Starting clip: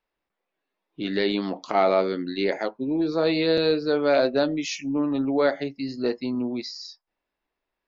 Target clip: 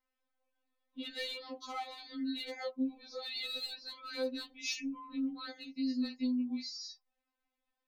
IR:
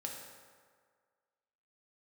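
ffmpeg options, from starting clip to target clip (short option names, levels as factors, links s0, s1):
-filter_complex "[0:a]acrossover=split=2800[s0][s1];[s0]acompressor=threshold=0.0251:ratio=8[s2];[s2][s1]amix=inputs=2:normalize=0,volume=14.1,asoftclip=hard,volume=0.0708,afftfilt=real='re*3.46*eq(mod(b,12),0)':imag='im*3.46*eq(mod(b,12),0)':win_size=2048:overlap=0.75,volume=0.708"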